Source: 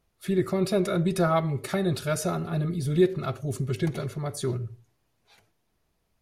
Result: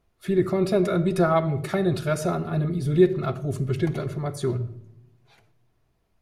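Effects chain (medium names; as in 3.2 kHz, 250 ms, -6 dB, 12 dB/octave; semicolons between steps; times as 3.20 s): treble shelf 3.4 kHz -8 dB; on a send: reverberation RT60 0.90 s, pre-delay 3 ms, DRR 13.5 dB; on the sum: trim +3 dB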